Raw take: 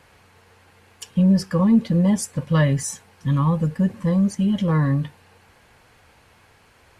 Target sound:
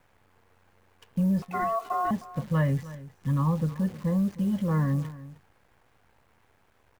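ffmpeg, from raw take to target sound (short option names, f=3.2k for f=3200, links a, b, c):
-filter_complex "[0:a]lowpass=1.8k,acrossover=split=170|740[a][b][c];[b]alimiter=limit=-20dB:level=0:latency=1:release=29[d];[a][d][c]amix=inputs=3:normalize=0,asettb=1/sr,asplit=3[e][f][g];[e]atrim=end=1.424[h];[f]atrim=start=1.42:end=2.11,asetpts=PTS-STARTPTS,afade=t=in:d=0.004:c=qsin,afade=t=out:st=0.686:d=0.004:c=qsin,aeval=exprs='val(0)*sin(2*PI*900*n/s)':c=same[i];[g]atrim=start=2.106[j];[h][i]acrossfade=d=0.004:c1=hsin:c2=qsin[k];[k][j]acrossfade=d=0.004:c1=qsin:c2=hsin,acrusher=bits=8:dc=4:mix=0:aa=0.000001,aecho=1:1:310:0.141,volume=-5.5dB"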